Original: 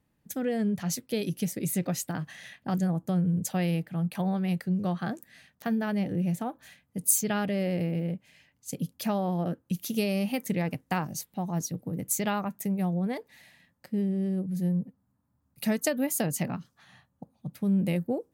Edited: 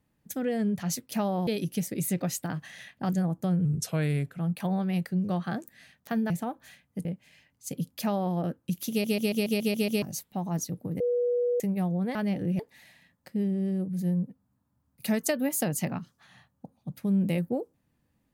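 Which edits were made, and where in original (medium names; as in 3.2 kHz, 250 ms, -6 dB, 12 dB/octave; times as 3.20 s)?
3.30–3.92 s: speed 86%
5.85–6.29 s: move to 13.17 s
7.04–8.07 s: delete
9.02–9.37 s: copy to 1.12 s
9.92 s: stutter in place 0.14 s, 8 plays
12.02–12.62 s: bleep 486 Hz -23 dBFS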